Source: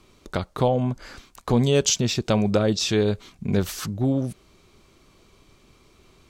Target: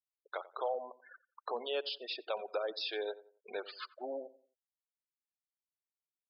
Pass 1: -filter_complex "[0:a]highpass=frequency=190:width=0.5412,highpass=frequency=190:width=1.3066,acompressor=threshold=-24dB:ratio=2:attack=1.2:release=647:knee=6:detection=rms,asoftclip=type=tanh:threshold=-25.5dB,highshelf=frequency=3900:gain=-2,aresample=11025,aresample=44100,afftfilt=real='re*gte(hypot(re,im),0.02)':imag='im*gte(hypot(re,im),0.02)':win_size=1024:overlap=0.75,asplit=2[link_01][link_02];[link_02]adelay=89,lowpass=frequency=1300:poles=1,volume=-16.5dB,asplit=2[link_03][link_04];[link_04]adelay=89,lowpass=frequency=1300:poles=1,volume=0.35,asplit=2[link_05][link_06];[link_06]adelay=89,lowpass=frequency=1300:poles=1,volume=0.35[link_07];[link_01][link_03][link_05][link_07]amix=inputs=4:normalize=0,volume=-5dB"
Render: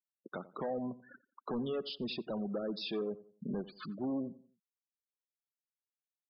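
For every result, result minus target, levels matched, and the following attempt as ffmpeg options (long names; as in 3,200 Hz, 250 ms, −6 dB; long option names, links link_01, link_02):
250 Hz band +16.0 dB; soft clipping: distortion +10 dB
-filter_complex "[0:a]highpass=frequency=510:width=0.5412,highpass=frequency=510:width=1.3066,acompressor=threshold=-24dB:ratio=2:attack=1.2:release=647:knee=6:detection=rms,asoftclip=type=tanh:threshold=-25.5dB,highshelf=frequency=3900:gain=-2,aresample=11025,aresample=44100,afftfilt=real='re*gte(hypot(re,im),0.02)':imag='im*gte(hypot(re,im),0.02)':win_size=1024:overlap=0.75,asplit=2[link_01][link_02];[link_02]adelay=89,lowpass=frequency=1300:poles=1,volume=-16.5dB,asplit=2[link_03][link_04];[link_04]adelay=89,lowpass=frequency=1300:poles=1,volume=0.35,asplit=2[link_05][link_06];[link_06]adelay=89,lowpass=frequency=1300:poles=1,volume=0.35[link_07];[link_01][link_03][link_05][link_07]amix=inputs=4:normalize=0,volume=-5dB"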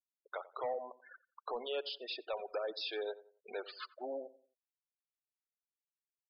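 soft clipping: distortion +9 dB
-filter_complex "[0:a]highpass=frequency=510:width=0.5412,highpass=frequency=510:width=1.3066,acompressor=threshold=-24dB:ratio=2:attack=1.2:release=647:knee=6:detection=rms,asoftclip=type=tanh:threshold=-18.5dB,highshelf=frequency=3900:gain=-2,aresample=11025,aresample=44100,afftfilt=real='re*gte(hypot(re,im),0.02)':imag='im*gte(hypot(re,im),0.02)':win_size=1024:overlap=0.75,asplit=2[link_01][link_02];[link_02]adelay=89,lowpass=frequency=1300:poles=1,volume=-16.5dB,asplit=2[link_03][link_04];[link_04]adelay=89,lowpass=frequency=1300:poles=1,volume=0.35,asplit=2[link_05][link_06];[link_06]adelay=89,lowpass=frequency=1300:poles=1,volume=0.35[link_07];[link_01][link_03][link_05][link_07]amix=inputs=4:normalize=0,volume=-5dB"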